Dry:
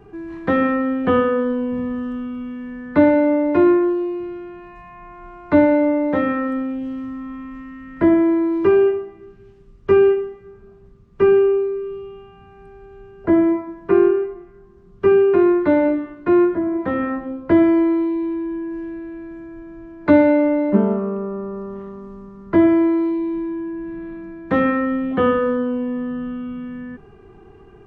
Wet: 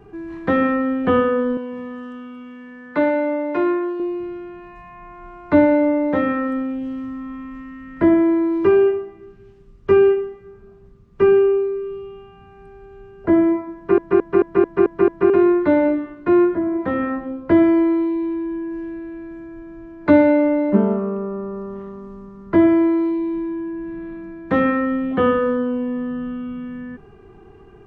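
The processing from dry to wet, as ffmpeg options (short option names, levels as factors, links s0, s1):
-filter_complex "[0:a]asettb=1/sr,asplit=3[s0][s1][s2];[s0]atrim=end=1.574[s3];[s1]atrim=start=1.57:end=4,asetpts=PTS-STARTPTS,afade=t=in:d=0.004:c=qsin,afade=t=out:st=2.426:d=0.004:c=qsin,highpass=f=590:p=1[s4];[s2]atrim=start=3.996[s5];[s3][s4]acrossfade=d=0.004:c1=hsin:c2=qsin[s6];[s6][s5]acrossfade=d=0.004:c1=qsin:c2=hsin,asplit=8[s7][s8][s9][s10][s11][s12][s13][s14];[s7]atrim=end=13.982[s15];[s8]atrim=start=13.758:end=13.982[s16];[s9]atrim=start=13.758:end=13.982[s17];[s10]atrim=start=13.758:end=13.982[s18];[s11]atrim=start=13.758:end=13.982[s19];[s12]atrim=start=13.758:end=13.982[s20];[s13]atrim=start=13.758:end=13.982[s21];[s14]atrim=start=15.298[s22];[s15][s16]acrossfade=d=0.004:c1=hsin:c2=hsin[s23];[s23][s17]acrossfade=d=0.004:c1=hsin:c2=hsin[s24];[s24][s18]acrossfade=d=0.004:c1=hsin:c2=hsin[s25];[s25][s19]acrossfade=d=0.004:c1=hsin:c2=hsin[s26];[s26][s20]acrossfade=d=0.004:c1=hsin:c2=hsin[s27];[s27][s21]acrossfade=d=0.004:c1=hsin:c2=hsin[s28];[s28][s22]acrossfade=d=0.004:c1=hsin:c2=hsin"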